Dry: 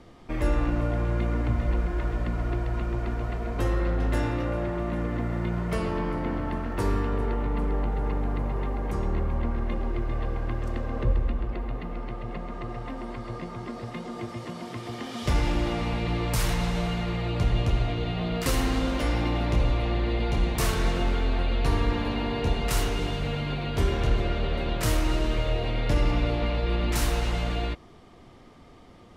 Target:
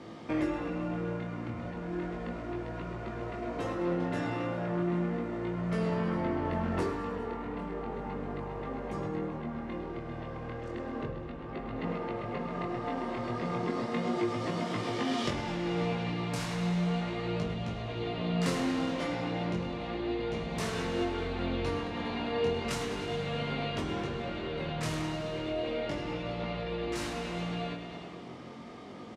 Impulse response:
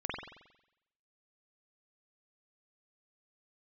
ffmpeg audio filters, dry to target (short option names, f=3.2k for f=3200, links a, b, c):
-filter_complex "[0:a]aecho=1:1:103|206|309|412|515|618|721:0.266|0.16|0.0958|0.0575|0.0345|0.0207|0.0124,acompressor=threshold=-32dB:ratio=6,asplit=2[a][b];[1:a]atrim=start_sample=2205,lowshelf=f=410:g=9.5[c];[b][c]afir=irnorm=-1:irlink=0,volume=-11dB[d];[a][d]amix=inputs=2:normalize=0,flanger=delay=18.5:depth=6.1:speed=0.34,highpass=170,lowpass=7.7k,volume=6dB"